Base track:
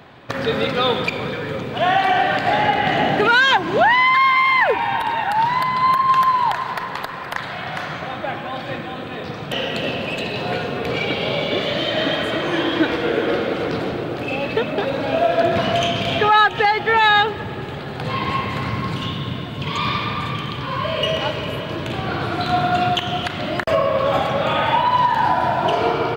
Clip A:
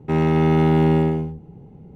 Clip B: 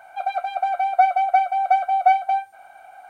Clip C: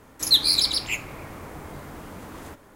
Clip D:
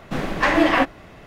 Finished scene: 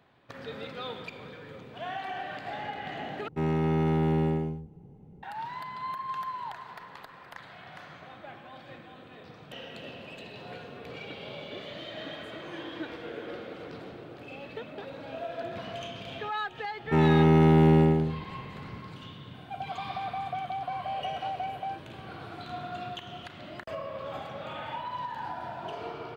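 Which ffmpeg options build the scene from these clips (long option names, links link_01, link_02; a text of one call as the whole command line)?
ffmpeg -i bed.wav -i cue0.wav -i cue1.wav -filter_complex "[1:a]asplit=2[link_01][link_02];[0:a]volume=-19.5dB[link_03];[link_01]acontrast=54[link_04];[2:a]acompressor=threshold=-21dB:ratio=6:attack=3.2:release=140:knee=1:detection=peak[link_05];[link_03]asplit=2[link_06][link_07];[link_06]atrim=end=3.284[link_08];[link_04]atrim=end=1.95,asetpts=PTS-STARTPTS,volume=-14.5dB[link_09];[link_07]atrim=start=5.226[link_10];[link_02]atrim=end=1.95,asetpts=PTS-STARTPTS,volume=-3dB,afade=type=in:duration=0.004:curve=hsin,afade=type=out:start_time=1.946:duration=0.004:curve=hsin,adelay=16830[link_11];[link_05]atrim=end=3.09,asetpts=PTS-STARTPTS,volume=-10dB,afade=type=in:duration=0.004:curve=hsin,afade=type=out:start_time=3.086:duration=0.004:curve=hsin,adelay=19340[link_12];[link_08][link_09]acrossfade=duration=0.004:curve1=hsin:curve2=hsin[link_13];[link_13][link_10]acrossfade=duration=0.004:curve1=hsin:curve2=hsin[link_14];[link_14][link_11][link_12]amix=inputs=3:normalize=0" out.wav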